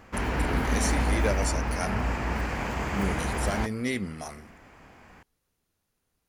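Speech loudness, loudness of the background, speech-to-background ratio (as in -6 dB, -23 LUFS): -33.0 LUFS, -29.0 LUFS, -4.0 dB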